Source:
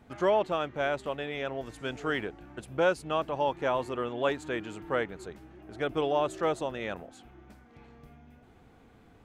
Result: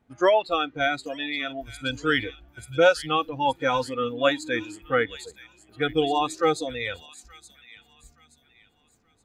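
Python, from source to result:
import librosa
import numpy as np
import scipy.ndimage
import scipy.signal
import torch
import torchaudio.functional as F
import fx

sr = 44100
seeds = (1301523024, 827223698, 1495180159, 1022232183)

y = fx.noise_reduce_blind(x, sr, reduce_db=19)
y = fx.echo_wet_highpass(y, sr, ms=874, feedback_pct=33, hz=3200.0, wet_db=-8.0)
y = fx.dynamic_eq(y, sr, hz=4400.0, q=1.4, threshold_db=-57.0, ratio=4.0, max_db=8)
y = F.gain(torch.from_numpy(y), 8.0).numpy()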